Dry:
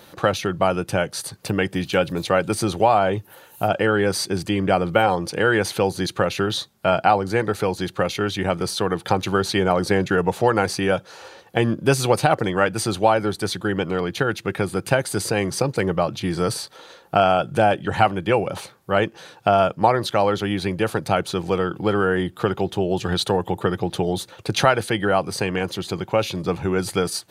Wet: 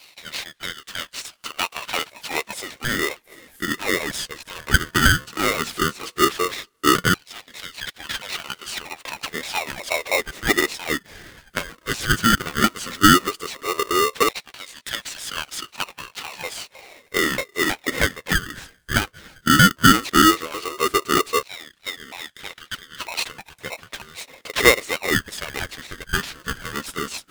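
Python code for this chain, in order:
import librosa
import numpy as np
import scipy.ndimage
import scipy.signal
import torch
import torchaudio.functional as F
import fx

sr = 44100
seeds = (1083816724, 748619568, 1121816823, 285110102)

y = fx.pitch_ramps(x, sr, semitones=-6.0, every_ms=316)
y = fx.filter_lfo_highpass(y, sr, shape='saw_down', hz=0.14, low_hz=350.0, high_hz=3200.0, q=4.6)
y = y * np.sign(np.sin(2.0 * np.pi * 800.0 * np.arange(len(y)) / sr))
y = y * librosa.db_to_amplitude(-3.5)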